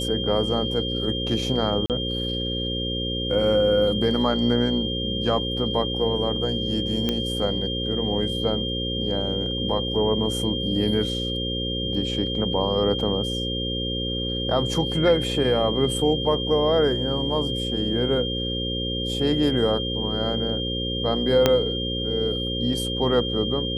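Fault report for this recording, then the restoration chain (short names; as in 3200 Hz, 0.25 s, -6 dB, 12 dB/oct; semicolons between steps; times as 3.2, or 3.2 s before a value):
buzz 60 Hz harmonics 9 -29 dBFS
tone 3200 Hz -28 dBFS
1.86–1.9 gap 38 ms
7.09 pop -10 dBFS
21.46 pop -3 dBFS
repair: de-click; de-hum 60 Hz, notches 9; notch 3200 Hz, Q 30; interpolate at 1.86, 38 ms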